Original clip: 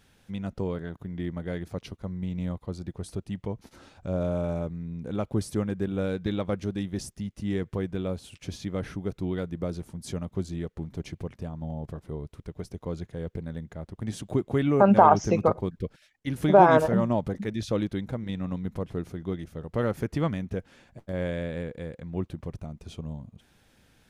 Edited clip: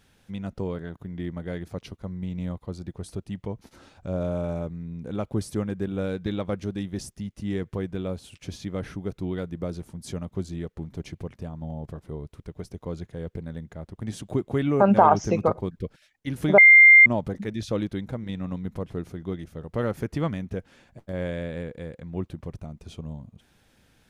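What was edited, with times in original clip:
16.58–17.06 s: bleep 2.1 kHz -8 dBFS

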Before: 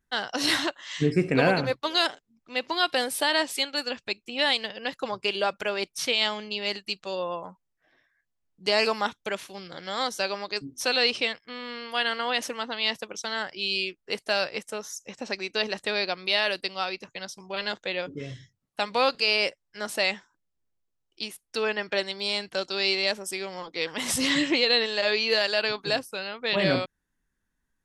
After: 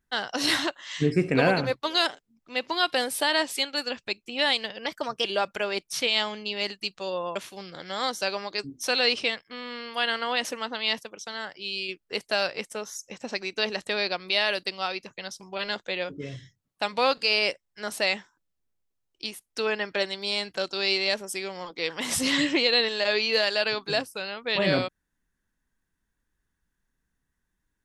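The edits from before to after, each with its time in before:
4.86–5.30 s: speed 114%
7.41–9.33 s: delete
13.01–13.86 s: gain -4.5 dB

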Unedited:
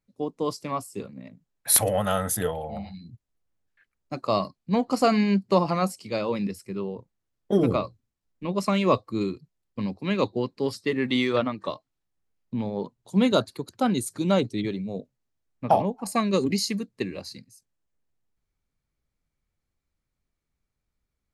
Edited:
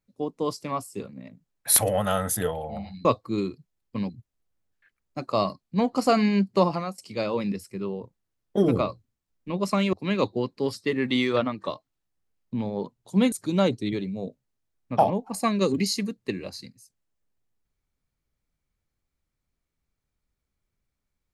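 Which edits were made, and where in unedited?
5.61–5.93 s: fade out, to -21 dB
8.88–9.93 s: move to 3.05 s
13.32–14.04 s: delete

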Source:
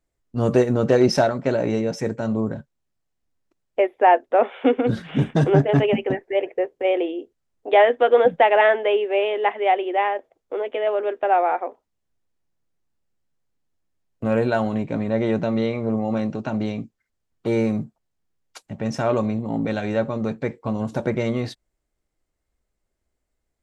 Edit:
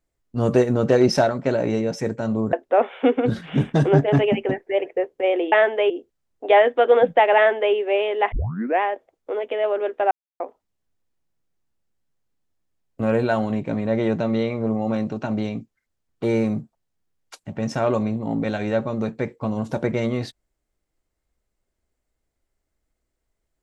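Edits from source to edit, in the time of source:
2.53–4.14 s: delete
8.59–8.97 s: copy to 7.13 s
9.55 s: tape start 0.49 s
11.34–11.63 s: mute

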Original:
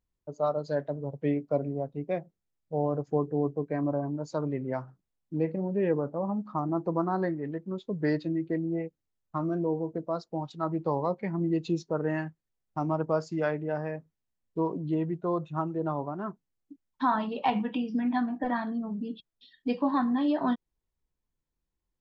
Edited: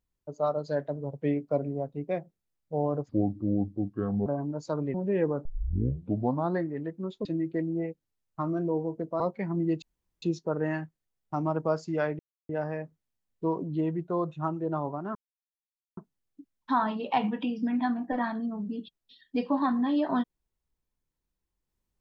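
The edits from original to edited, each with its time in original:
3.09–3.91 s: speed 70%
4.59–5.62 s: delete
6.13 s: tape start 1.11 s
7.93–8.21 s: delete
10.16–11.04 s: delete
11.66 s: insert room tone 0.40 s
13.63 s: insert silence 0.30 s
16.29 s: insert silence 0.82 s

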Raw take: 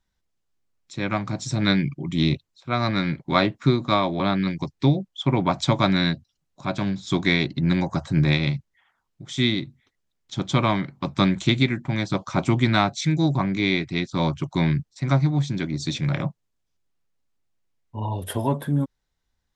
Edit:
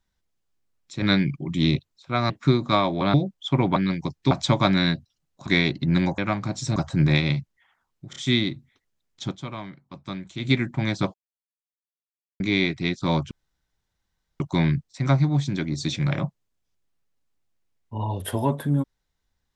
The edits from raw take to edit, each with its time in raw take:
1.02–1.60 s: move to 7.93 s
2.88–3.49 s: delete
4.33–4.88 s: move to 5.50 s
6.66–7.22 s: delete
9.27 s: stutter 0.03 s, 3 plays
10.35–11.64 s: dip -14 dB, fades 0.14 s
12.25–13.51 s: mute
14.42 s: insert room tone 1.09 s

